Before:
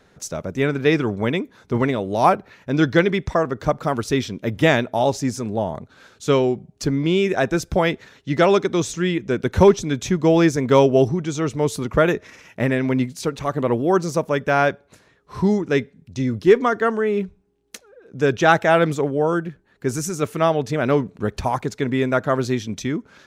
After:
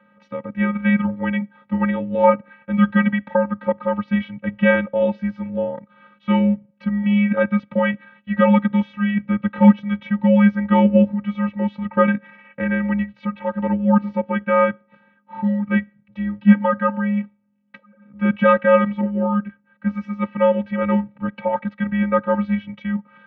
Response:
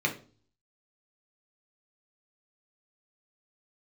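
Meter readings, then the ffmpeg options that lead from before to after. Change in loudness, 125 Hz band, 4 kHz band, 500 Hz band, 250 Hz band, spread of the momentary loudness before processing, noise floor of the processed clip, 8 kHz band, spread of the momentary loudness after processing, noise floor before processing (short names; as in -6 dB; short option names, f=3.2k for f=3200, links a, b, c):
+0.5 dB, -1.0 dB, n/a, -2.5 dB, +4.5 dB, 10 LU, -60 dBFS, under -40 dB, 11 LU, -58 dBFS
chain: -af "afftfilt=real='hypot(re,im)*cos(PI*b)':imag='0':win_size=512:overlap=0.75,highpass=f=250:t=q:w=0.5412,highpass=f=250:t=q:w=1.307,lowpass=f=2.8k:t=q:w=0.5176,lowpass=f=2.8k:t=q:w=0.7071,lowpass=f=2.8k:t=q:w=1.932,afreqshift=-140,volume=4.5dB"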